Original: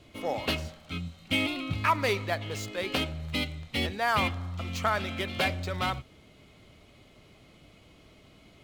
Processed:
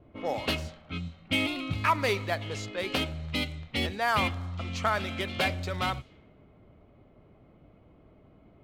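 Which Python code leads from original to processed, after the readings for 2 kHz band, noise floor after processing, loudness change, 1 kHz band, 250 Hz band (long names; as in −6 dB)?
0.0 dB, −58 dBFS, 0.0 dB, 0.0 dB, 0.0 dB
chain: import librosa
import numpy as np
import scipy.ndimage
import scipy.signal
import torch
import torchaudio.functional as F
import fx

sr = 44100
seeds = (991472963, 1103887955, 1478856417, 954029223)

y = fx.env_lowpass(x, sr, base_hz=900.0, full_db=-28.0)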